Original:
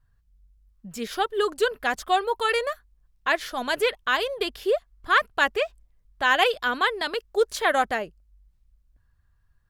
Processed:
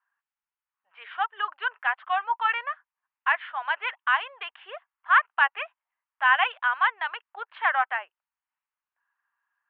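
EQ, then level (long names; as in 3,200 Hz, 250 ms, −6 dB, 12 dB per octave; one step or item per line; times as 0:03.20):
elliptic band-pass filter 870–3,000 Hz, stop band 60 dB
high-frequency loss of the air 470 metres
+5.0 dB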